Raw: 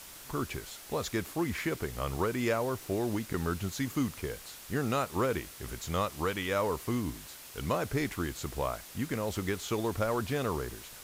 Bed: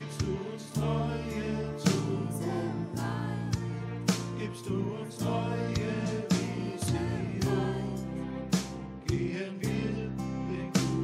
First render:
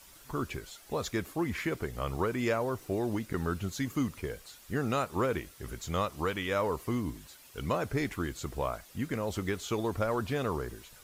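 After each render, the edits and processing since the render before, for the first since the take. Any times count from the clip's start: denoiser 9 dB, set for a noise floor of -49 dBFS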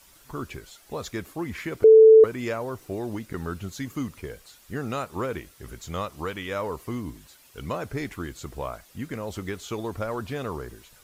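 1.84–2.24 bleep 441 Hz -8 dBFS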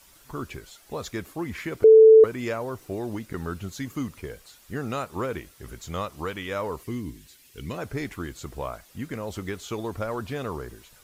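6.83–7.78 band shelf 870 Hz -9 dB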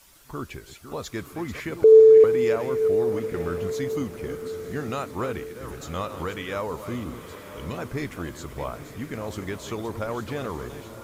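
reverse delay 0.32 s, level -10.5 dB; diffused feedback echo 0.999 s, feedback 47%, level -11 dB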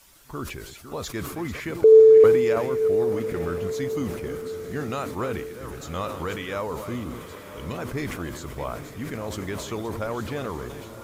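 sustainer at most 50 dB/s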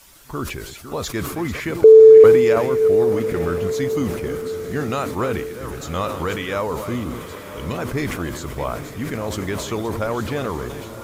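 gain +6 dB; limiter -2 dBFS, peak gain reduction 2.5 dB

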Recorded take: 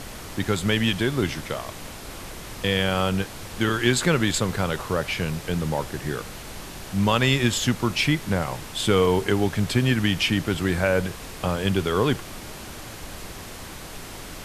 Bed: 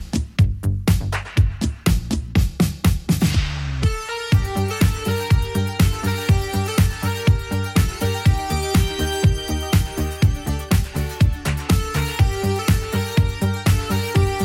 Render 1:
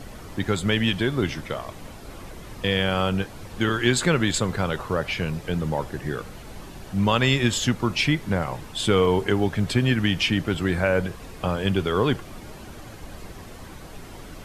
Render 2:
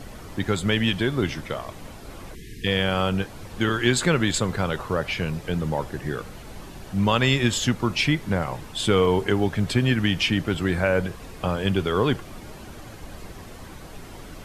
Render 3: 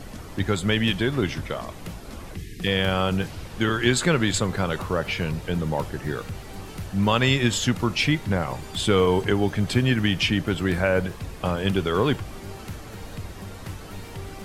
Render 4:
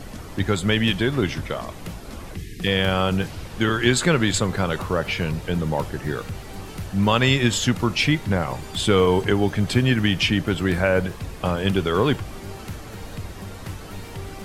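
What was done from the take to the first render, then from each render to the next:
denoiser 9 dB, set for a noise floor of -39 dBFS
2.35–2.66 spectral delete 460–1600 Hz
add bed -20 dB
gain +2 dB

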